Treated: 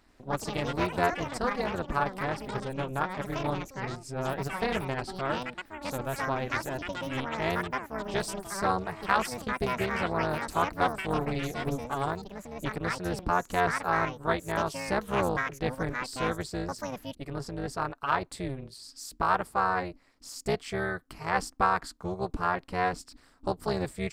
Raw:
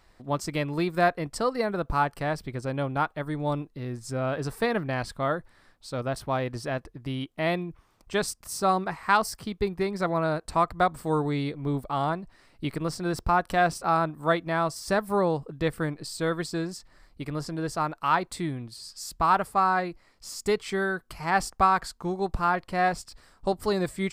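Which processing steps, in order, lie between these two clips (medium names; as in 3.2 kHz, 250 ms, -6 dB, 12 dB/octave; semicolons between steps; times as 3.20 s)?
AM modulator 270 Hz, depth 85%; ever faster or slower copies 89 ms, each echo +6 st, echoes 2, each echo -6 dB; loudspeaker Doppler distortion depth 0.22 ms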